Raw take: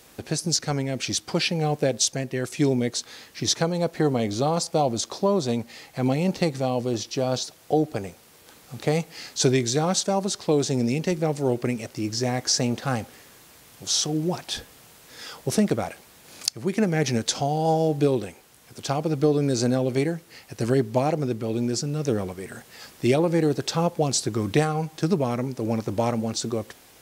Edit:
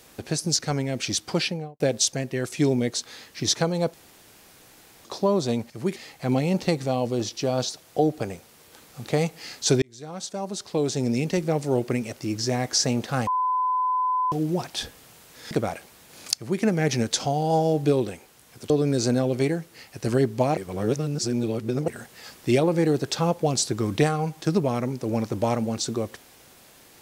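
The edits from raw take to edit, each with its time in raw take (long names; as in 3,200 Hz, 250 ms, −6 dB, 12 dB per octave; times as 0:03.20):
0:01.37–0:01.80: fade out and dull
0:03.94–0:05.05: fill with room tone
0:09.56–0:10.96: fade in
0:13.01–0:14.06: beep over 1,010 Hz −20.5 dBFS
0:15.25–0:15.66: remove
0:16.51–0:16.77: duplicate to 0:05.70
0:18.85–0:19.26: remove
0:21.13–0:22.44: reverse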